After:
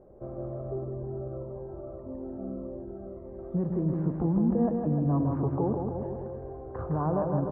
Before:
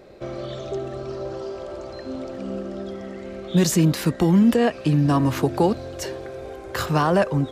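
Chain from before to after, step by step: low-pass 1 kHz 24 dB/octave; bass shelf 75 Hz +9.5 dB; peak limiter -13 dBFS, peak gain reduction 6 dB; bouncing-ball echo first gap 160 ms, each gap 0.9×, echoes 5; 0.84–3.39 s: Shepard-style phaser falling 1.7 Hz; trim -8 dB

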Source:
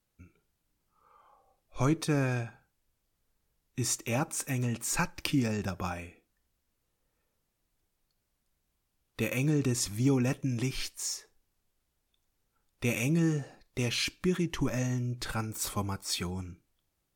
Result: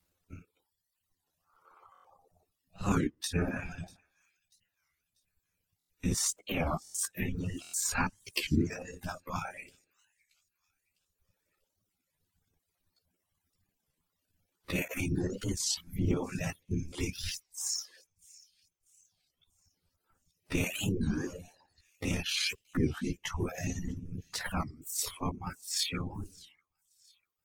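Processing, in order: reverb removal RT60 0.79 s; dynamic bell 480 Hz, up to -5 dB, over -42 dBFS, Q 1.1; in parallel at -2 dB: compression, threshold -43 dBFS, peak gain reduction 18 dB; on the sum: whisper effect; reverb removal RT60 1.7 s; granular stretch 1.6×, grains 60 ms; on a send: feedback echo behind a high-pass 641 ms, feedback 39%, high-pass 3.2 kHz, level -22 dB; on the sum: buffer glitch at 1.93/5.78/6.83/7.62 s, samples 1024, times 4; warped record 33 1/3 rpm, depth 250 cents

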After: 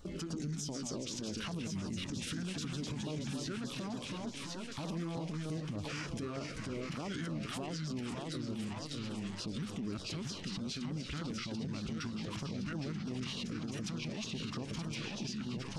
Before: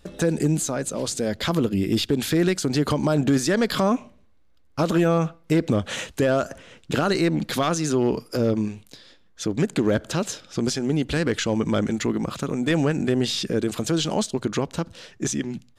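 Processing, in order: compression 10:1, threshold -30 dBFS, peak gain reduction 14.5 dB; ever faster or slower copies 100 ms, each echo -1 st, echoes 3, each echo -6 dB; thinning echo 1067 ms, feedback 51%, high-pass 900 Hz, level -7 dB; peak limiter -30.5 dBFS, peak gain reduction 11.5 dB; formant shift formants -4 st; LFO notch saw down 3.3 Hz 340–2700 Hz

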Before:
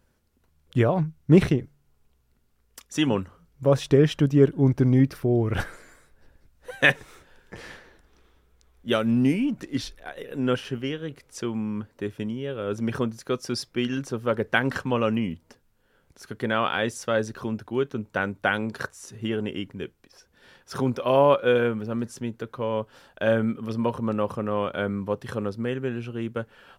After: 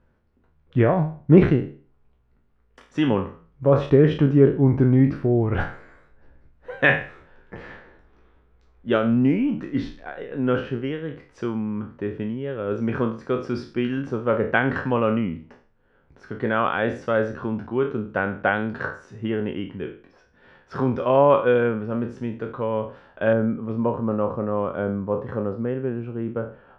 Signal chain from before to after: spectral sustain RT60 0.41 s; low-pass 1.9 kHz 12 dB/octave, from 23.33 s 1.1 kHz; trim +2 dB

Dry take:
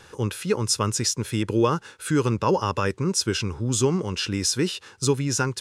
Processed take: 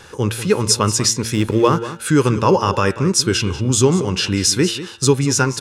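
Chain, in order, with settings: de-hum 114.3 Hz, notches 37; 1.34–1.77 s: hysteresis with a dead band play -34.5 dBFS; delay 189 ms -14 dB; trim +7.5 dB

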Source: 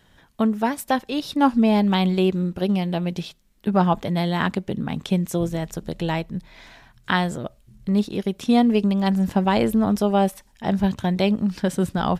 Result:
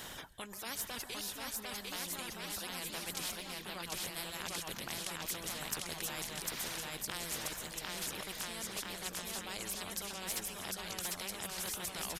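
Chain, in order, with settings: sawtooth pitch modulation -1.5 st, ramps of 582 ms; treble shelf 5.6 kHz +10 dB; reverse; compression 6:1, threshold -33 dBFS, peak gain reduction 18.5 dB; reverse; delay 321 ms -21 dB; on a send at -14 dB: reverberation RT60 2.2 s, pre-delay 120 ms; on the sum: gain riding within 3 dB 0.5 s; reverb removal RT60 1.5 s; bouncing-ball echo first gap 750 ms, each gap 0.75×, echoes 5; spectrum-flattening compressor 4:1

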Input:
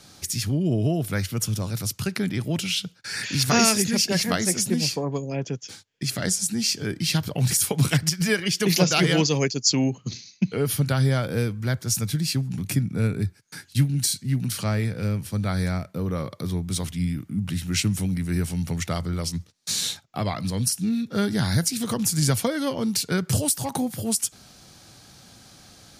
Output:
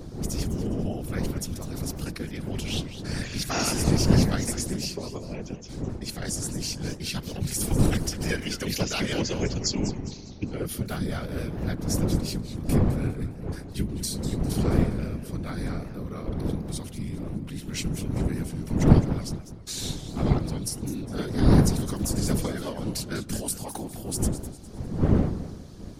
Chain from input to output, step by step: wind noise 200 Hz -20 dBFS; whisper effect; modulated delay 203 ms, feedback 38%, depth 214 cents, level -12 dB; trim -8 dB

